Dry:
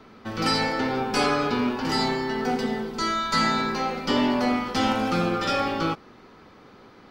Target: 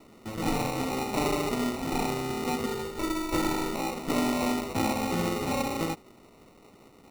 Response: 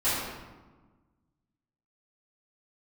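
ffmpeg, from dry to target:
-filter_complex "[0:a]acrusher=samples=27:mix=1:aa=0.000001,asettb=1/sr,asplit=3[s0][s1][s2];[s0]atrim=end=2.664[s3];[s1]atrim=start=2.66:end=3.73,asetpts=PTS-STARTPTS,afade=t=in:d=0.004:c=qsin,afade=t=out:st=1.066:d=0.004:c=qsin,aecho=1:1:2.2:0.54,atrim=end_sample=47187[s4];[s2]atrim=start=3.726[s5];[s3][s4]acrossfade=d=0.004:c1=hsin:c2=qsin[s6];[s6][s5]acrossfade=d=0.004:c1=qsin:c2=hsin,volume=0.596"

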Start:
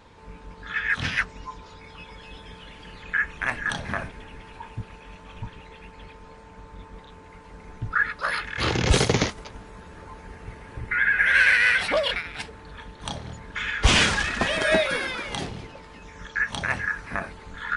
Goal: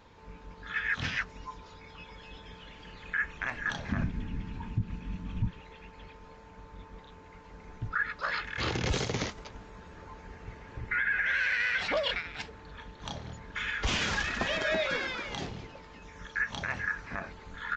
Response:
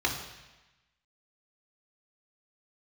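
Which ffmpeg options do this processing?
-filter_complex "[0:a]asettb=1/sr,asplit=3[s0][s1][s2];[s0]atrim=end=3.924[s3];[s1]atrim=start=3.92:end=5.51,asetpts=PTS-STARTPTS,afade=t=in:d=0.004:c=qsin,afade=t=out:st=1.586:d=0.004:c=qsin,lowshelf=f=340:t=q:w=1.5:g=13[s4];[s2]atrim=start=5.506[s5];[s3][s4]acrossfade=d=0.004:c1=hsin:c2=qsin[s6];[s6][s5]acrossfade=d=0.004:c1=qsin:c2=hsin,alimiter=limit=0.178:level=0:latency=1:release=102,aresample=16000,aresample=44100,volume=0.562"

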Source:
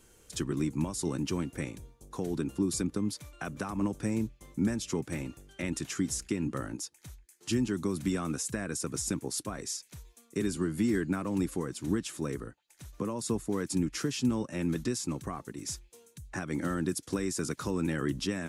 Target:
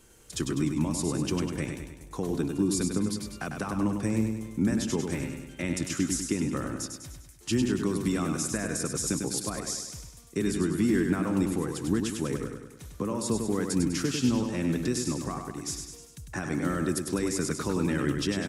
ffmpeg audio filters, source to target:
-af "aecho=1:1:100|200|300|400|500|600|700:0.531|0.276|0.144|0.0746|0.0388|0.0202|0.0105,volume=1.33"

